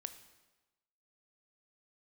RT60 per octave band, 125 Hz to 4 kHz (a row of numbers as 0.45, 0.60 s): 1.0, 1.1, 1.1, 1.1, 1.0, 1.0 s